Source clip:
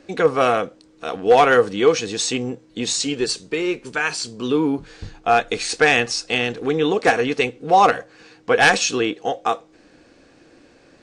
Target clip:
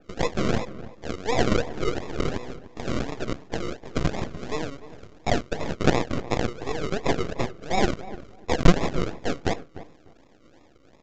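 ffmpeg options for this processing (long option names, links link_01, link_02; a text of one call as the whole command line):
ffmpeg -i in.wav -filter_complex "[0:a]highpass=frequency=73:width=0.5412,highpass=frequency=73:width=1.3066,lowshelf=frequency=160:gain=-11,acrossover=split=430|1200[link_01][link_02][link_03];[link_01]acompressor=threshold=-38dB:ratio=6[link_04];[link_02]alimiter=limit=-16dB:level=0:latency=1:release=130[link_05];[link_04][link_05][link_03]amix=inputs=3:normalize=0,acrusher=samples=41:mix=1:aa=0.000001:lfo=1:lforange=24.6:lforate=2.8,aeval=exprs='max(val(0),0)':channel_layout=same,asplit=2[link_06][link_07];[link_07]adelay=298,lowpass=frequency=1400:poles=1,volume=-14.5dB,asplit=2[link_08][link_09];[link_09]adelay=298,lowpass=frequency=1400:poles=1,volume=0.21[link_10];[link_08][link_10]amix=inputs=2:normalize=0[link_11];[link_06][link_11]amix=inputs=2:normalize=0,aresample=16000,aresample=44100,adynamicequalizer=threshold=0.00708:dfrequency=3500:dqfactor=0.7:tfrequency=3500:tqfactor=0.7:attack=5:release=100:ratio=0.375:range=2:mode=cutabove:tftype=highshelf,volume=1dB" out.wav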